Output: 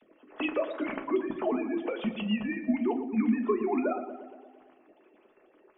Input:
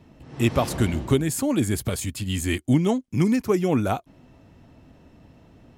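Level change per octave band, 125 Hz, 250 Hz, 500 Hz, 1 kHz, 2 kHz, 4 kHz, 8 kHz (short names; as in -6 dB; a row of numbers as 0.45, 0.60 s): under -20 dB, -5.5 dB, -4.5 dB, -5.0 dB, -4.5 dB, -10.0 dB, under -40 dB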